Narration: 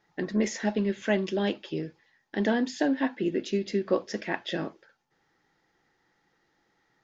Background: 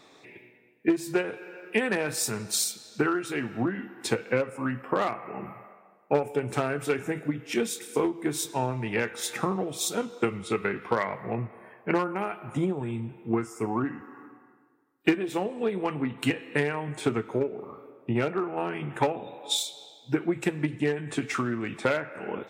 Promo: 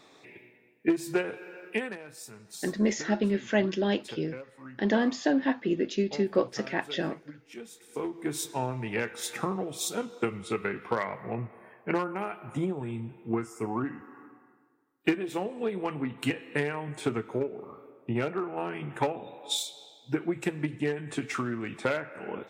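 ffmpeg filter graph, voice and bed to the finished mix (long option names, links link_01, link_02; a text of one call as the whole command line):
ffmpeg -i stem1.wav -i stem2.wav -filter_complex "[0:a]adelay=2450,volume=0.5dB[link_01];[1:a]volume=12dB,afade=type=out:start_time=1.64:duration=0.34:silence=0.177828,afade=type=in:start_time=7.79:duration=0.51:silence=0.211349[link_02];[link_01][link_02]amix=inputs=2:normalize=0" out.wav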